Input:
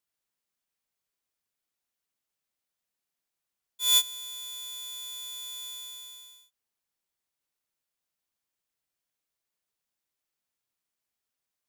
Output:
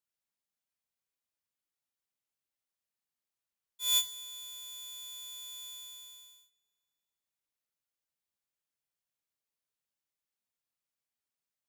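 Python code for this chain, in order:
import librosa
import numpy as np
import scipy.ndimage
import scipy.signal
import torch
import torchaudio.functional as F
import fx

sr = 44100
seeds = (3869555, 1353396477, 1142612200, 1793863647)

y = fx.rev_double_slope(x, sr, seeds[0], early_s=0.37, late_s=2.8, knee_db=-28, drr_db=8.0)
y = y * librosa.db_to_amplitude(-7.0)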